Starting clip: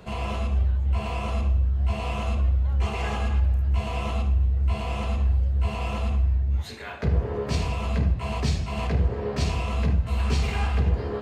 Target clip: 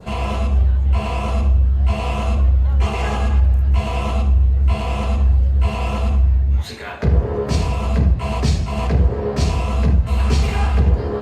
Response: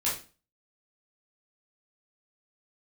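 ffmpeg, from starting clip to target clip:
-af "adynamicequalizer=threshold=0.00447:dfrequency=2600:dqfactor=0.75:tfrequency=2600:tqfactor=0.75:attack=5:release=100:ratio=0.375:range=2.5:mode=cutabove:tftype=bell,volume=7.5dB" -ar 48000 -c:a libopus -b:a 64k

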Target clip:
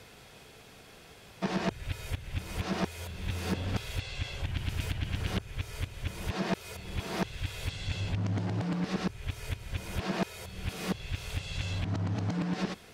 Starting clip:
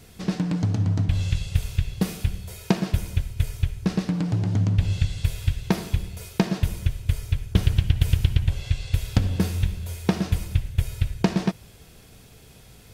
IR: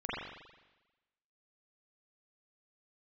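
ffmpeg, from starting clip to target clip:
-filter_complex "[0:a]areverse,asoftclip=type=tanh:threshold=-13dB,asplit=2[link_01][link_02];[link_02]highpass=frequency=720:poles=1,volume=17dB,asoftclip=type=tanh:threshold=-13dB[link_03];[link_01][link_03]amix=inputs=2:normalize=0,lowpass=frequency=2300:poles=1,volume=-6dB,volume=-6.5dB"

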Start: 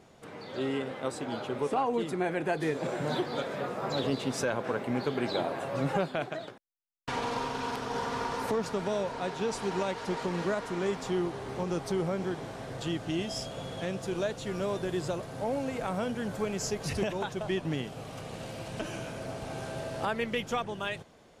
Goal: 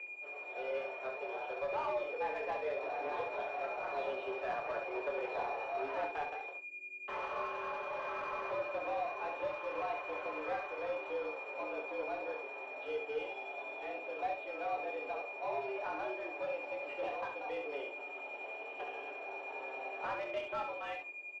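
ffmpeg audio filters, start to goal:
ffmpeg -i in.wav -filter_complex "[0:a]aecho=1:1:6.8:0.4,aeval=exprs='val(0)+0.00398*(sin(2*PI*50*n/s)+sin(2*PI*2*50*n/s)/2+sin(2*PI*3*50*n/s)/3+sin(2*PI*4*50*n/s)/4+sin(2*PI*5*50*n/s)/5)':channel_layout=same,flanger=delay=7.9:depth=7.3:regen=-86:speed=0.18:shape=triangular,acrossover=split=620|2000[link_01][link_02][link_03];[link_02]adynamicsmooth=sensitivity=6.5:basefreq=1000[link_04];[link_01][link_04][link_03]amix=inputs=3:normalize=0,aeval=exprs='val(0)+0.00891*sin(2*PI*2300*n/s)':channel_layout=same,acrusher=bits=7:mix=0:aa=0.5,highpass=frequency=240:width_type=q:width=0.5412,highpass=frequency=240:width_type=q:width=1.307,lowpass=frequency=3000:width_type=q:width=0.5176,lowpass=frequency=3000:width_type=q:width=0.7071,lowpass=frequency=3000:width_type=q:width=1.932,afreqshift=130,flanger=delay=5.7:depth=3.5:regen=-50:speed=0.62:shape=triangular,asplit=2[link_05][link_06];[link_06]highpass=frequency=720:poles=1,volume=16dB,asoftclip=type=tanh:threshold=-24.5dB[link_07];[link_05][link_07]amix=inputs=2:normalize=0,lowpass=frequency=1200:poles=1,volume=-6dB,asplit=2[link_08][link_09];[link_09]aecho=0:1:26|69:0.501|0.501[link_10];[link_08][link_10]amix=inputs=2:normalize=0,volume=-3dB" out.wav

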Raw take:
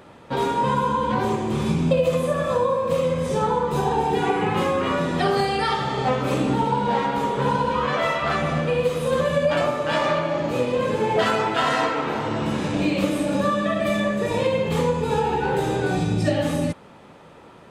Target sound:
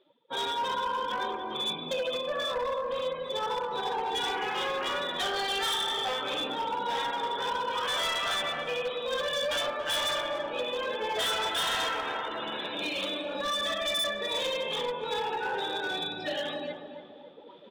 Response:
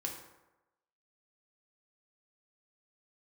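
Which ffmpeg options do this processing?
-filter_complex "[0:a]afftdn=noise_reduction=28:noise_floor=-35,highpass=470,adynamicequalizer=threshold=0.00631:dfrequency=1600:dqfactor=4.7:tfrequency=1600:tqfactor=4.7:attack=5:release=100:ratio=0.375:range=3:mode=boostabove:tftype=bell,areverse,acompressor=mode=upward:threshold=-28dB:ratio=2.5,areverse,lowpass=frequency=3500:width_type=q:width=15,volume=19dB,asoftclip=hard,volume=-19dB,asplit=2[link_01][link_02];[link_02]adelay=281,lowpass=frequency=1400:poles=1,volume=-8dB,asplit=2[link_03][link_04];[link_04]adelay=281,lowpass=frequency=1400:poles=1,volume=0.5,asplit=2[link_05][link_06];[link_06]adelay=281,lowpass=frequency=1400:poles=1,volume=0.5,asplit=2[link_07][link_08];[link_08]adelay=281,lowpass=frequency=1400:poles=1,volume=0.5,asplit=2[link_09][link_10];[link_10]adelay=281,lowpass=frequency=1400:poles=1,volume=0.5,asplit=2[link_11][link_12];[link_12]adelay=281,lowpass=frequency=1400:poles=1,volume=0.5[link_13];[link_01][link_03][link_05][link_07][link_09][link_11][link_13]amix=inputs=7:normalize=0,volume=-8dB"

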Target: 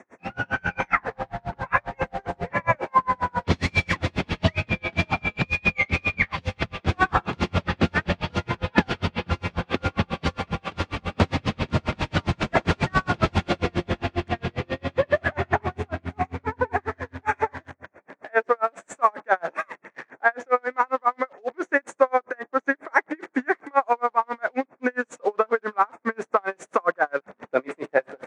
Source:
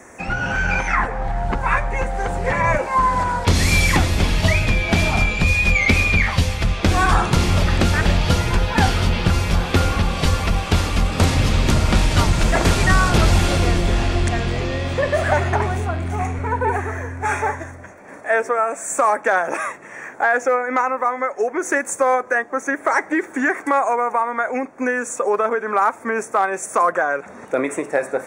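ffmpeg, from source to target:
ffmpeg -i in.wav -filter_complex "[0:a]asplit=2[link_01][link_02];[link_02]acrusher=bits=4:mix=0:aa=0.000001,volume=-7.5dB[link_03];[link_01][link_03]amix=inputs=2:normalize=0,highpass=110,lowpass=3300,aeval=exprs='val(0)*pow(10,-39*(0.5-0.5*cos(2*PI*7.4*n/s))/20)':channel_layout=same,volume=-1dB" out.wav

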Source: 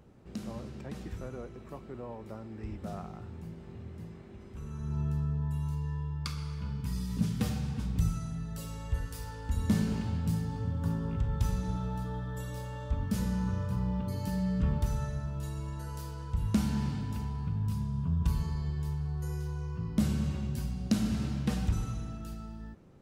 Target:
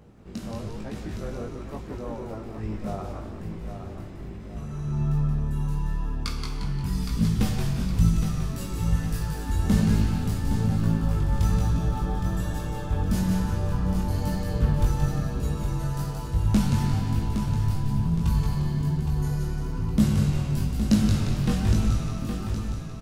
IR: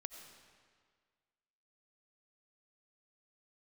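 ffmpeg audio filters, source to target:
-filter_complex "[0:a]asplit=2[link_01][link_02];[link_02]asplit=5[link_03][link_04][link_05][link_06][link_07];[link_03]adelay=176,afreqshift=-110,volume=-4.5dB[link_08];[link_04]adelay=352,afreqshift=-220,volume=-11.6dB[link_09];[link_05]adelay=528,afreqshift=-330,volume=-18.8dB[link_10];[link_06]adelay=704,afreqshift=-440,volume=-25.9dB[link_11];[link_07]adelay=880,afreqshift=-550,volume=-33dB[link_12];[link_08][link_09][link_10][link_11][link_12]amix=inputs=5:normalize=0[link_13];[link_01][link_13]amix=inputs=2:normalize=0,flanger=delay=18.5:depth=3.1:speed=1.1,asplit=2[link_14][link_15];[link_15]aecho=0:1:815|1630|2445|3260|4075:0.398|0.171|0.0736|0.0317|0.0136[link_16];[link_14][link_16]amix=inputs=2:normalize=0,volume=8.5dB"

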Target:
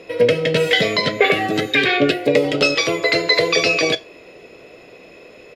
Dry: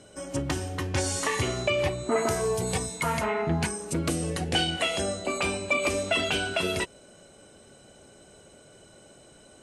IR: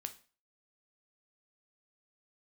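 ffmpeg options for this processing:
-filter_complex "[0:a]firequalizer=gain_entry='entry(110,0);entry(270,14);entry(520,-10);entry(1200,12);entry(3400,-4);entry(9000,-28)':delay=0.05:min_phase=1,asplit=2[link_01][link_02];[1:a]atrim=start_sample=2205[link_03];[link_02][link_03]afir=irnorm=-1:irlink=0,volume=9.5dB[link_04];[link_01][link_04]amix=inputs=2:normalize=0,asetrate=76440,aresample=44100,volume=-4dB"

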